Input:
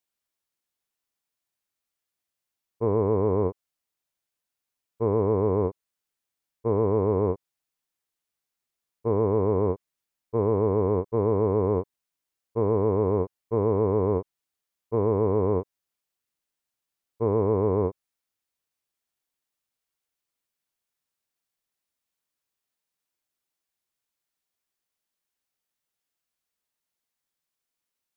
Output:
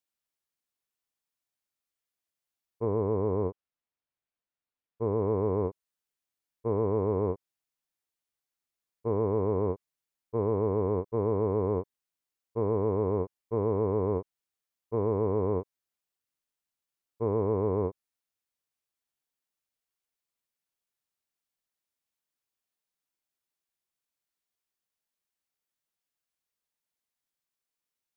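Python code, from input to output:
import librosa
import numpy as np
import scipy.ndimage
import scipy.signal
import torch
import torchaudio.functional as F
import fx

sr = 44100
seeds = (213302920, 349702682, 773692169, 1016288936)

y = fx.air_absorb(x, sr, metres=240.0, at=(2.85, 5.22))
y = y * 10.0 ** (-4.5 / 20.0)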